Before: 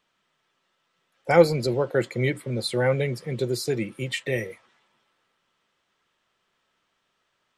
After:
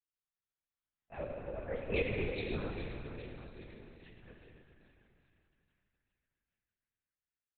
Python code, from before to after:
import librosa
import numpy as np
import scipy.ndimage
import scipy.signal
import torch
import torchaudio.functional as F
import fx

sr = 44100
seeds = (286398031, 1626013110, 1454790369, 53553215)

p1 = fx.doppler_pass(x, sr, speed_mps=45, closest_m=3.7, pass_at_s=2.05)
p2 = fx.wow_flutter(p1, sr, seeds[0], rate_hz=2.1, depth_cents=100.0)
p3 = p2 + fx.echo_split(p2, sr, split_hz=1000.0, low_ms=280, high_ms=412, feedback_pct=52, wet_db=-9, dry=0)
p4 = fx.rev_plate(p3, sr, seeds[1], rt60_s=2.9, hf_ratio=0.85, predelay_ms=0, drr_db=-2.0)
p5 = fx.lpc_vocoder(p4, sr, seeds[2], excitation='whisper', order=8)
y = p5 * 10.0 ** (-6.5 / 20.0)